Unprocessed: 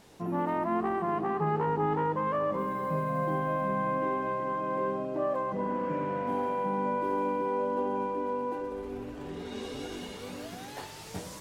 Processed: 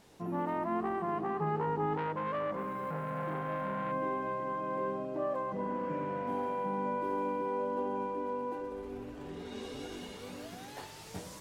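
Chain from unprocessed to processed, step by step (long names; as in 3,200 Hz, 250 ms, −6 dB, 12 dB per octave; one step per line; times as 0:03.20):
0:01.97–0:03.92: saturating transformer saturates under 870 Hz
level −4 dB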